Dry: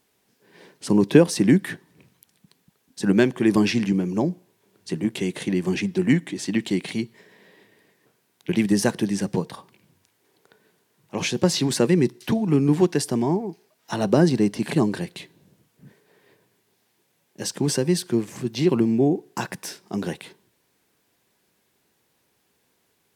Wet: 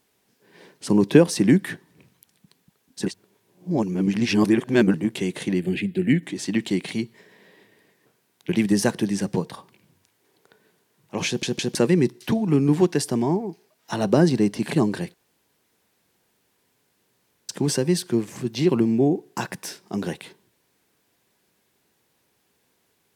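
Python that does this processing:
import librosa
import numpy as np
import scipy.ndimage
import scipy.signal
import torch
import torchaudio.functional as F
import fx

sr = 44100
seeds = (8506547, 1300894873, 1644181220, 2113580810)

y = fx.fixed_phaser(x, sr, hz=2500.0, stages=4, at=(5.6, 6.23))
y = fx.edit(y, sr, fx.reverse_span(start_s=3.06, length_s=1.88),
    fx.stutter_over(start_s=11.27, slice_s=0.16, count=3),
    fx.room_tone_fill(start_s=15.14, length_s=2.35), tone=tone)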